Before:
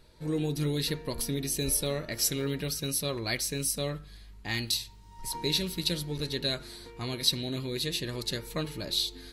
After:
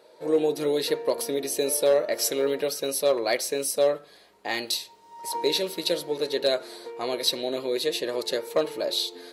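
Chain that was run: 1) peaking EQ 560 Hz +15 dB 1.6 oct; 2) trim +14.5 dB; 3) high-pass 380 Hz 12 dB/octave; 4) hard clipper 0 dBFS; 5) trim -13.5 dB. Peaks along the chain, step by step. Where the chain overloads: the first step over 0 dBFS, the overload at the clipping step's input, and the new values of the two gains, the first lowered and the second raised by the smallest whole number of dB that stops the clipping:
-9.5 dBFS, +5.0 dBFS, +5.0 dBFS, 0.0 dBFS, -13.5 dBFS; step 2, 5.0 dB; step 2 +9.5 dB, step 5 -8.5 dB

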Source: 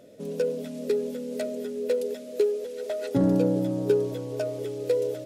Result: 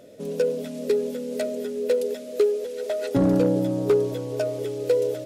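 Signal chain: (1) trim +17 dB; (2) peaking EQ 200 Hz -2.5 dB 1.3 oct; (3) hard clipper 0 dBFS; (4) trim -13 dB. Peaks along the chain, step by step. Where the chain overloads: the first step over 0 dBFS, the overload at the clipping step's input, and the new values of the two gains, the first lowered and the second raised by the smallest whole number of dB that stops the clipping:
+6.5 dBFS, +5.5 dBFS, 0.0 dBFS, -13.0 dBFS; step 1, 5.5 dB; step 1 +11 dB, step 4 -7 dB

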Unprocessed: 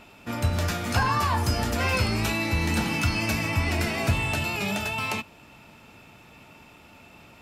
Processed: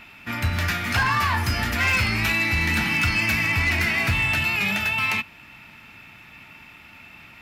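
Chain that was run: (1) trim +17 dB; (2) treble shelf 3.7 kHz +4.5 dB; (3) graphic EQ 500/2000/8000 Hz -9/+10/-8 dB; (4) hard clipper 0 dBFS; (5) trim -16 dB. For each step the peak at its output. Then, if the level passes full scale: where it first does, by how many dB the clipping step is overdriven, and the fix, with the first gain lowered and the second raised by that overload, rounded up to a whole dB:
+6.0 dBFS, +6.5 dBFS, +7.5 dBFS, 0.0 dBFS, -16.0 dBFS; step 1, 7.5 dB; step 1 +9 dB, step 5 -8 dB

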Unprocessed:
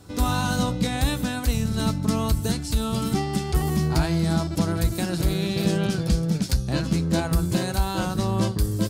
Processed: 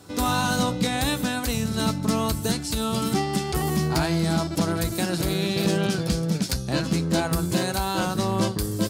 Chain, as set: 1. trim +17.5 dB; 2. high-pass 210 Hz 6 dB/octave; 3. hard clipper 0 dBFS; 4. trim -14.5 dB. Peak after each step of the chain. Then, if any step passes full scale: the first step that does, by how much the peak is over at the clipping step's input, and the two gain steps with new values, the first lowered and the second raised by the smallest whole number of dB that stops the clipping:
+5.5 dBFS, +5.5 dBFS, 0.0 dBFS, -14.5 dBFS; step 1, 5.5 dB; step 1 +11.5 dB, step 4 -8.5 dB

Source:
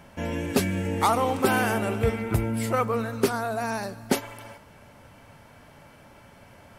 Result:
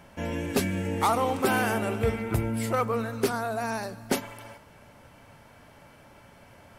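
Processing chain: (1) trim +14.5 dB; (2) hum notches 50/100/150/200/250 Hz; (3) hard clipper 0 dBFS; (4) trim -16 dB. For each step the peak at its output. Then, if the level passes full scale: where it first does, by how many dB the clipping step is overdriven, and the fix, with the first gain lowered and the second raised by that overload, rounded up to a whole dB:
+5.5 dBFS, +5.5 dBFS, 0.0 dBFS, -16.0 dBFS; step 1, 5.5 dB; step 1 +8.5 dB, step 4 -10 dB

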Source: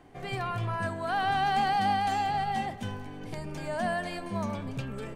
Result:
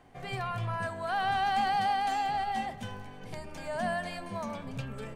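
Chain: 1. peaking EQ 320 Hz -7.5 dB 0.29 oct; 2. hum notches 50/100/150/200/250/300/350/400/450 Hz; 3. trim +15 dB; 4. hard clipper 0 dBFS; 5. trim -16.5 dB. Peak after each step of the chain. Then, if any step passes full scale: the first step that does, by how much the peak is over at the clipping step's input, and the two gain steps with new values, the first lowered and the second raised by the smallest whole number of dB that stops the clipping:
-16.5 dBFS, -17.0 dBFS, -2.0 dBFS, -2.0 dBFS, -18.5 dBFS; nothing clips

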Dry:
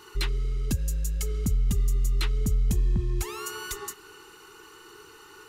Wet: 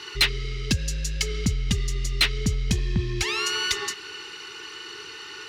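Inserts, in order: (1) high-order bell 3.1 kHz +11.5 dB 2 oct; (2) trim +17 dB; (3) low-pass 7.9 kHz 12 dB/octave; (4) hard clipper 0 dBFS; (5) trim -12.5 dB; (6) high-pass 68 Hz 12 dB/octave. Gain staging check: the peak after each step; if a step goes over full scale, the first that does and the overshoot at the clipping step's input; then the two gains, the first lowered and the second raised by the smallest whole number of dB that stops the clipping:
-6.5 dBFS, +10.5 dBFS, +10.0 dBFS, 0.0 dBFS, -12.5 dBFS, -8.5 dBFS; step 2, 10.0 dB; step 2 +7 dB, step 5 -2.5 dB

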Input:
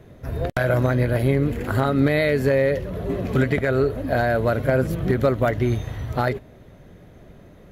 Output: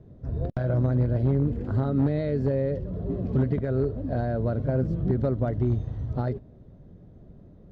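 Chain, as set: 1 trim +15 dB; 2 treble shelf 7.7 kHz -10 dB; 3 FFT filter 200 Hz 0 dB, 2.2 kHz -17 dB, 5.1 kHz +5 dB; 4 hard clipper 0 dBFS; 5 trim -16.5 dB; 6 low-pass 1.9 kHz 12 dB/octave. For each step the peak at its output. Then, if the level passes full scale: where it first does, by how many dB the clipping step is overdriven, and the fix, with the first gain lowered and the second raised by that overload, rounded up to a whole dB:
+6.5 dBFS, +6.5 dBFS, +4.5 dBFS, 0.0 dBFS, -16.5 dBFS, -16.5 dBFS; step 1, 4.5 dB; step 1 +10 dB, step 5 -11.5 dB

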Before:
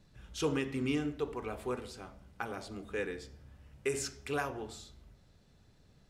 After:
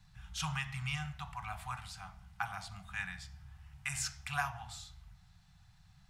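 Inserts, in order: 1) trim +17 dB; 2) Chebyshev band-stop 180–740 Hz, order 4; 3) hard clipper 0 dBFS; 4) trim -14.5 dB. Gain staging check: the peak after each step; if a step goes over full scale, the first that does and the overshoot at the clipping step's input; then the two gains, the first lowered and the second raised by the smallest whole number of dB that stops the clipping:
-3.5 dBFS, -5.5 dBFS, -5.5 dBFS, -20.0 dBFS; nothing clips

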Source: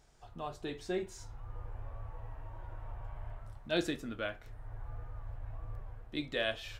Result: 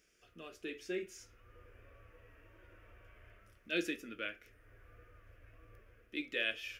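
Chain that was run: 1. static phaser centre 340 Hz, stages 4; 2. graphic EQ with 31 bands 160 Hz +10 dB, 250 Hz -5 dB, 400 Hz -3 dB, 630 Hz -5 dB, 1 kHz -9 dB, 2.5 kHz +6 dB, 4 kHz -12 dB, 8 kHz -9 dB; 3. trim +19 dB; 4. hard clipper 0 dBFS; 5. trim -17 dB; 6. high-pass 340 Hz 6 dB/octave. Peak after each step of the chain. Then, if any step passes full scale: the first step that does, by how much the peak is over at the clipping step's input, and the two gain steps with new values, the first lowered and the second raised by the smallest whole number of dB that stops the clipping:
-20.5 dBFS, -22.0 dBFS, -3.0 dBFS, -3.0 dBFS, -20.0 dBFS, -21.5 dBFS; nothing clips

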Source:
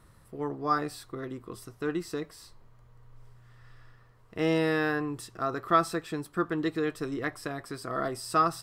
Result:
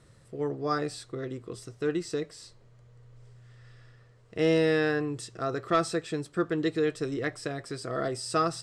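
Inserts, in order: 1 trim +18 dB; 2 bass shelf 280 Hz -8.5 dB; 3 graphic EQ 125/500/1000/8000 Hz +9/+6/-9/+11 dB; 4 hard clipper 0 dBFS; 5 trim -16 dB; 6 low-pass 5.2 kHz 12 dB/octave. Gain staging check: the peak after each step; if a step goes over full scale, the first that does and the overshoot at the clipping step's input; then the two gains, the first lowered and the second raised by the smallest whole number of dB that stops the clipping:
+7.5 dBFS, +7.0 dBFS, +4.5 dBFS, 0.0 dBFS, -16.0 dBFS, -15.5 dBFS; step 1, 4.5 dB; step 1 +13 dB, step 5 -11 dB

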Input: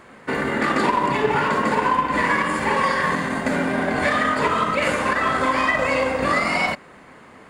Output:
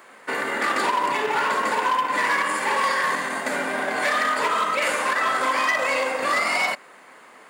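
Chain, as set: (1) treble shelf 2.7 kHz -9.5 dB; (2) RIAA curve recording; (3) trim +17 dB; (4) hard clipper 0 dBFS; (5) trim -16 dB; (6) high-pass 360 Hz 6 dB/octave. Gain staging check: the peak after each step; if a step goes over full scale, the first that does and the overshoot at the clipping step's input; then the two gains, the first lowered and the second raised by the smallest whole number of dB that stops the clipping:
-8.5 dBFS, -9.5 dBFS, +7.5 dBFS, 0.0 dBFS, -16.0 dBFS, -12.5 dBFS; step 3, 7.5 dB; step 3 +9 dB, step 5 -8 dB

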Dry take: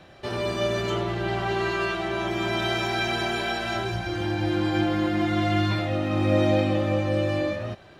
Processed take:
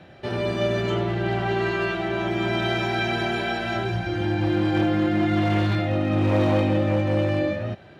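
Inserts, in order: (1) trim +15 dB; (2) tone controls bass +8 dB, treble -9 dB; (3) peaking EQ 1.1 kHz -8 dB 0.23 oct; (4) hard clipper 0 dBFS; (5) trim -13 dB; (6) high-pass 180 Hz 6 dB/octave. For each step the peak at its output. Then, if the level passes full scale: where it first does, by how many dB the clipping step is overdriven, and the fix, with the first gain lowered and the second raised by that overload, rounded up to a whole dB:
+4.5 dBFS, +8.5 dBFS, +8.5 dBFS, 0.0 dBFS, -13.0 dBFS, -10.0 dBFS; step 1, 8.5 dB; step 1 +6 dB, step 5 -4 dB

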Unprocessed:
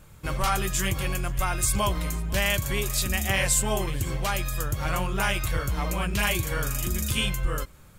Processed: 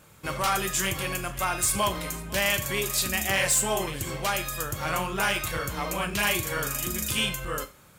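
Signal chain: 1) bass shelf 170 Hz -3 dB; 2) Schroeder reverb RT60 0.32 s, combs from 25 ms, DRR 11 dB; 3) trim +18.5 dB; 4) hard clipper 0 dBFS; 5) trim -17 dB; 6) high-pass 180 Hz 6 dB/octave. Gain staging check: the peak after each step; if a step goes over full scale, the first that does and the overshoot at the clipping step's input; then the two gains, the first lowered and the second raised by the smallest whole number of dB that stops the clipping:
-11.5 dBFS, -11.0 dBFS, +7.5 dBFS, 0.0 dBFS, -17.0 dBFS, -12.5 dBFS; step 3, 7.5 dB; step 3 +10.5 dB, step 5 -9 dB

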